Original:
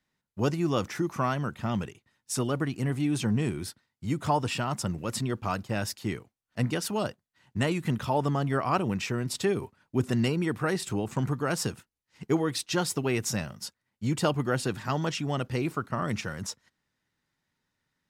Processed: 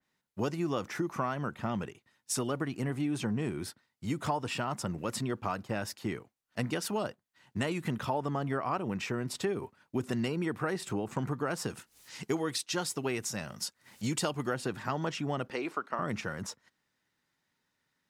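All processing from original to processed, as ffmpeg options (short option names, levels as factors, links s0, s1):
-filter_complex "[0:a]asettb=1/sr,asplit=3[s0][s1][s2];[s0]atrim=end=11.704[s3];[s1]atrim=start=11.7:end=14.54,asetpts=PTS-STARTPTS,afade=t=in:d=0.004:c=qsin,afade=t=out:st=2.836:d=0.004:c=qsin,equalizer=f=8000:t=o:w=2.6:g=8,acompressor=mode=upward:threshold=0.0158:ratio=2.5:attack=3.2:release=140:knee=2.83:detection=peak[s4];[s2]atrim=start=14.536[s5];[s3][s4]acrossfade=d=0.004:c1=hsin:c2=qsin[s6];[s6][s5]acrossfade=d=0.004:c1=qsin:c2=hsin,asettb=1/sr,asplit=3[s7][s8][s9];[s7]atrim=end=15.504[s10];[s8]atrim=start=15.5:end=15.99,asetpts=PTS-STARTPTS,afade=t=in:d=0.004:c=qsin,afade=t=out:st=0.486:d=0.004:c=qsin,highpass=250,lowpass=4400,aemphasis=mode=production:type=bsi[s11];[s9]atrim=start=15.986[s12];[s10][s11]acrossfade=d=0.004:c1=hsin:c2=qsin[s13];[s13][s12]acrossfade=d=0.004:c1=qsin:c2=hsin,lowshelf=f=130:g=-10.5,acompressor=threshold=0.0316:ratio=4,adynamicequalizer=threshold=0.00251:dfrequency=2400:dqfactor=0.7:tfrequency=2400:tqfactor=0.7:attack=5:release=100:ratio=0.375:range=3.5:mode=cutabove:tftype=highshelf,volume=1.19"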